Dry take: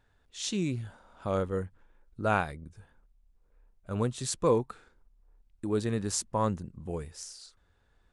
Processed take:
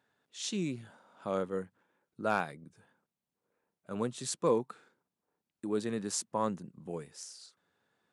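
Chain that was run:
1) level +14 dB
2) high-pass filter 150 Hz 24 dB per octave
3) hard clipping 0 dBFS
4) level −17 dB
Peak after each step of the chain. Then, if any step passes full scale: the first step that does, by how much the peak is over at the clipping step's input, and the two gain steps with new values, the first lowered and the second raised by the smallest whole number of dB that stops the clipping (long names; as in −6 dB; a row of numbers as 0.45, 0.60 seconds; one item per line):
+0.5, +3.0, 0.0, −17.0 dBFS
step 1, 3.0 dB
step 1 +11 dB, step 4 −14 dB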